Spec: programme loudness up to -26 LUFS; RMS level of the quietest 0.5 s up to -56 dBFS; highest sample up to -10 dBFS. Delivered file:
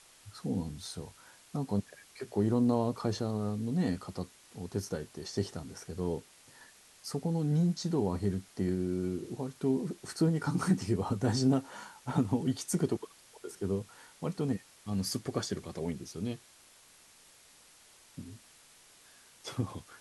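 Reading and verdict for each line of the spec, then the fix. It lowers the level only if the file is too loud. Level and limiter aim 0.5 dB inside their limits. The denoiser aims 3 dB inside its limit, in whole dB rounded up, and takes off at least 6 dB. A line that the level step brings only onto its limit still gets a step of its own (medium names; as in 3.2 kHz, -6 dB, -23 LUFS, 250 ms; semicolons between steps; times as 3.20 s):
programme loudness -33.5 LUFS: pass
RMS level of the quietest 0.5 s -59 dBFS: pass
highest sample -15.5 dBFS: pass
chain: none needed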